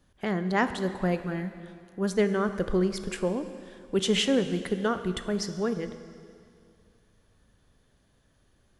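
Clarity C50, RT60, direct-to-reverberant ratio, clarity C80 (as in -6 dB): 10.5 dB, 2.3 s, 9.5 dB, 11.5 dB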